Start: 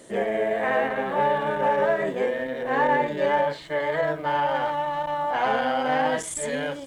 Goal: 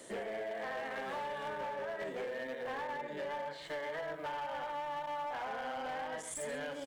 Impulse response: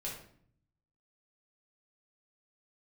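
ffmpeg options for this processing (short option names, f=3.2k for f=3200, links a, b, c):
-filter_complex "[0:a]acrossover=split=450|2000[a][b][c];[c]alimiter=level_in=6dB:limit=-24dB:level=0:latency=1:release=476,volume=-6dB[d];[a][b][d]amix=inputs=3:normalize=0,asettb=1/sr,asplit=3[e][f][g];[e]atrim=end=2.014[h];[f]atrim=start=2.01:end=2.55,asetpts=PTS-STARTPTS,afade=t=in:d=0.004:c=qsin,afade=t=out:st=0.536:d=0.004:c=qsin,acontrast=31[i];[g]atrim=start=2.546[j];[h][i]acrossfade=d=0.004:c1=hsin:c2=qsin[k];[k][j]acrossfade=d=0.004:c1=qsin:c2=hsin,lowshelf=f=350:g=-8,acompressor=threshold=-33dB:ratio=16,asettb=1/sr,asplit=3[l][m][n];[l]atrim=end=0.774[o];[m]atrim=start=0.77:end=1.48,asetpts=PTS-STARTPTS,afade=t=in:d=0.004:c=qsin,afade=t=out:st=0.706:d=0.004:c=qsin,equalizer=f=7k:w=0.56:g=10[p];[n]atrim=start=1.476[q];[o][p]acrossfade=d=0.004:c1=hsin:c2=qsin[r];[r][q]acrossfade=d=0.004:c1=qsin:c2=hsin,asplit=2[s][t];[t]adelay=134.1,volume=-13dB,highshelf=f=4k:g=-3.02[u];[s][u]amix=inputs=2:normalize=0,volume=33.5dB,asoftclip=hard,volume=-33.5dB,volume=-2dB"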